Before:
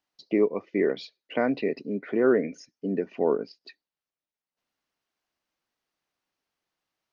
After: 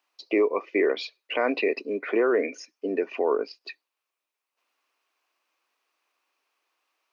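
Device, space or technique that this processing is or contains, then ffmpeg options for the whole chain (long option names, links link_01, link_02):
laptop speaker: -af "highpass=frequency=330:width=0.5412,highpass=frequency=330:width=1.3066,equalizer=frequency=1100:width_type=o:width=0.49:gain=7.5,equalizer=frequency=2500:width_type=o:width=0.32:gain=8.5,alimiter=limit=-19.5dB:level=0:latency=1:release=45,volume=5.5dB"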